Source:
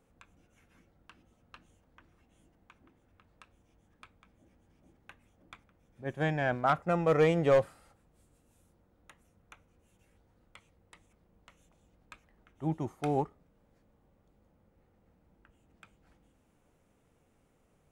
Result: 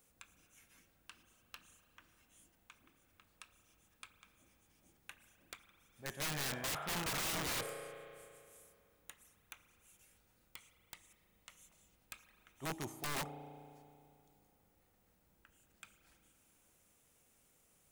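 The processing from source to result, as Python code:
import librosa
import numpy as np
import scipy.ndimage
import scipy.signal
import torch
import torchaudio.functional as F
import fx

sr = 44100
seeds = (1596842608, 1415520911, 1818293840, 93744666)

y = F.preemphasis(torch.from_numpy(x), 0.9).numpy()
y = fx.rev_spring(y, sr, rt60_s=2.5, pass_ms=(34,), chirp_ms=30, drr_db=11.0)
y = (np.mod(10.0 ** (44.0 / 20.0) * y + 1.0, 2.0) - 1.0) / 10.0 ** (44.0 / 20.0)
y = y * librosa.db_to_amplitude(11.0)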